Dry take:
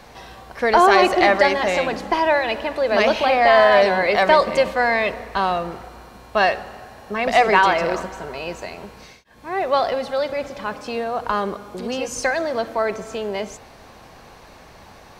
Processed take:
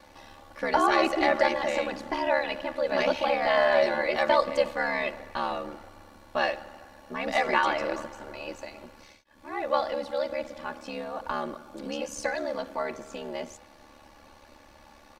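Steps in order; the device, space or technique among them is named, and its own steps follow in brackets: ring-modulated robot voice (ring modulator 36 Hz; comb 3.5 ms, depth 70%); trim -7.5 dB

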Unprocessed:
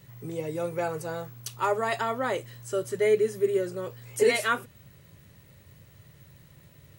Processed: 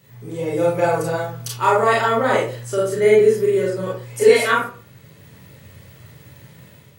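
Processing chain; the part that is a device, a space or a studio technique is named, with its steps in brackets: far laptop microphone (reverberation RT60 0.40 s, pre-delay 29 ms, DRR -4.5 dB; high-pass 100 Hz; level rider gain up to 6 dB)

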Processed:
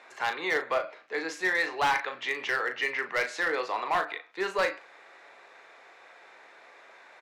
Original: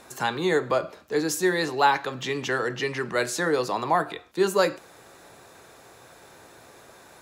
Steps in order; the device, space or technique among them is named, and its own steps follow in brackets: megaphone (band-pass 570–3500 Hz; peaking EQ 2.1 kHz +9 dB 0.46 oct; hard clipper -18.5 dBFS, distortion -13 dB; doubling 37 ms -8.5 dB); trim -2.5 dB

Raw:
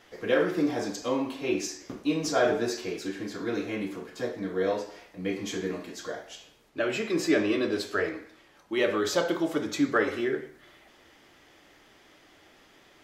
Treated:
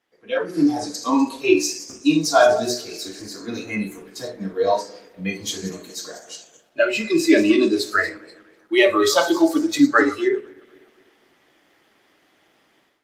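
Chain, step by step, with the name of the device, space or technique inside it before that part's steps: backward echo that repeats 124 ms, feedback 63%, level -12.5 dB; spectral noise reduction 16 dB; hum notches 60/120/180/240/300/360/420/480/540/600 Hz; 3.18–4.03 s: dynamic bell 3.4 kHz, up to -4 dB, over -60 dBFS, Q 1.8; video call (high-pass 140 Hz 12 dB/octave; level rider gain up to 15 dB; Opus 32 kbps 48 kHz)

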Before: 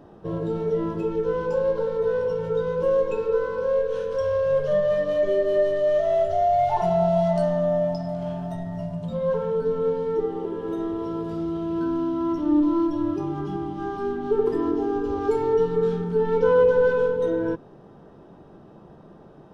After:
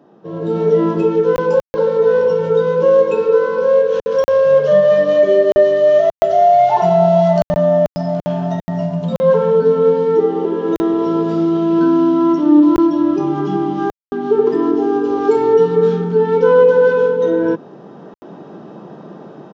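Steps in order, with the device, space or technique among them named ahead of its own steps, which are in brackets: call with lost packets (high-pass 170 Hz 24 dB/octave; resampled via 16 kHz; level rider gain up to 14 dB; lost packets of 20 ms bursts); bass shelf 100 Hz +7 dB; trim -1 dB

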